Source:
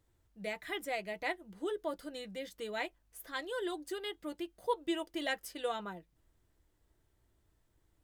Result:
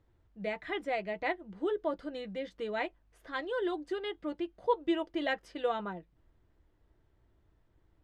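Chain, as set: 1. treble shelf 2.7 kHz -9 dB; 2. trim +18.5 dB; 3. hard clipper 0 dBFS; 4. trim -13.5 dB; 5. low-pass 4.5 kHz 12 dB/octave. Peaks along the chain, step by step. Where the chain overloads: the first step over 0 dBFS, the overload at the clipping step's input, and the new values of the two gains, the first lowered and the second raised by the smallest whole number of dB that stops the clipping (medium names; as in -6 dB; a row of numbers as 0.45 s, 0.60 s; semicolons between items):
-21.5 dBFS, -3.0 dBFS, -3.0 dBFS, -16.5 dBFS, -16.5 dBFS; nothing clips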